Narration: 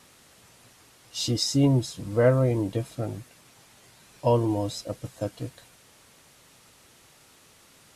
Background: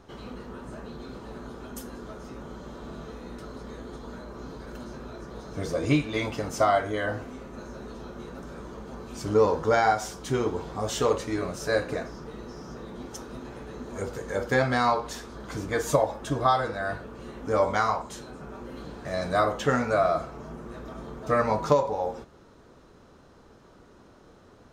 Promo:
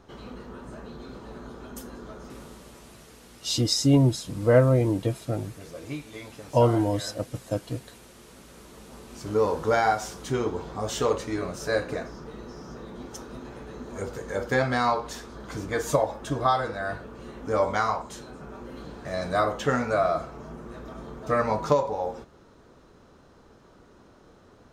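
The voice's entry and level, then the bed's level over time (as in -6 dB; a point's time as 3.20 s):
2.30 s, +2.0 dB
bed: 2.26 s -1 dB
3.00 s -12.5 dB
8.22 s -12.5 dB
9.65 s -0.5 dB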